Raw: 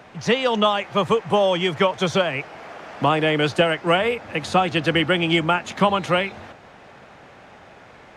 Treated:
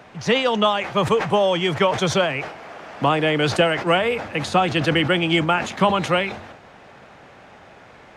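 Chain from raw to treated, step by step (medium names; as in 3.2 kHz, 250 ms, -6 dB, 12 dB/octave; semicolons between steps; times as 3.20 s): decay stretcher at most 86 dB/s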